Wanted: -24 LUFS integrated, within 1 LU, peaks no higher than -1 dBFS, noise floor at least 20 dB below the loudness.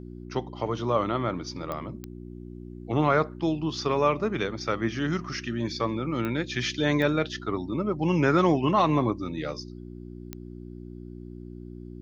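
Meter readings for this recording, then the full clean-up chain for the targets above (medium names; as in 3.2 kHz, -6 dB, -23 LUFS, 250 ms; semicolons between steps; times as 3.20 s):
clicks found 5; hum 60 Hz; highest harmonic 360 Hz; hum level -39 dBFS; loudness -27.0 LUFS; peak level -10.0 dBFS; loudness target -24.0 LUFS
-> de-click; de-hum 60 Hz, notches 6; trim +3 dB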